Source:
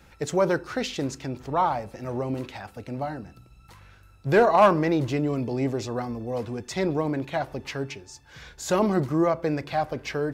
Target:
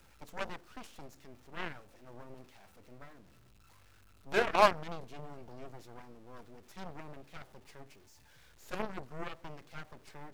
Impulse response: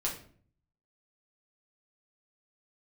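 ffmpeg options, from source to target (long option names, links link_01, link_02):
-af "aeval=exprs='val(0)+0.5*0.0422*sgn(val(0))':channel_layout=same,aeval=exprs='0.376*(cos(1*acos(clip(val(0)/0.376,-1,1)))-cos(1*PI/2))+0.168*(cos(3*acos(clip(val(0)/0.376,-1,1)))-cos(3*PI/2))+0.0335*(cos(4*acos(clip(val(0)/0.376,-1,1)))-cos(4*PI/2))+0.0211*(cos(5*acos(clip(val(0)/0.376,-1,1)))-cos(5*PI/2))':channel_layout=same,volume=-5.5dB"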